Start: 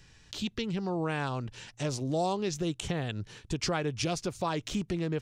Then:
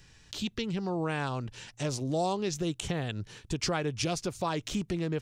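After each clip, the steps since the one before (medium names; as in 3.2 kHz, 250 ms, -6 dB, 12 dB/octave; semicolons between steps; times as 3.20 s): treble shelf 8.5 kHz +4 dB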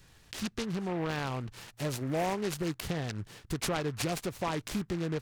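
delay time shaken by noise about 1.3 kHz, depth 0.065 ms; trim -1.5 dB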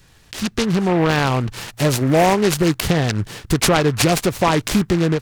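level rider gain up to 9.5 dB; trim +7 dB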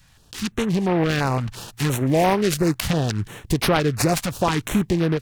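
step-sequenced notch 5.8 Hz 390–7300 Hz; trim -3 dB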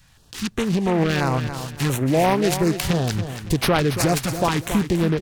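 feedback delay 280 ms, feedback 31%, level -10 dB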